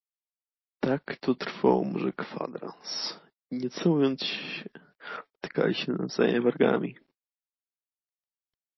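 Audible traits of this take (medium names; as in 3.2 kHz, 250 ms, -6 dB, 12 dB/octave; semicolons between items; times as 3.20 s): a quantiser's noise floor 12-bit, dither none; MP3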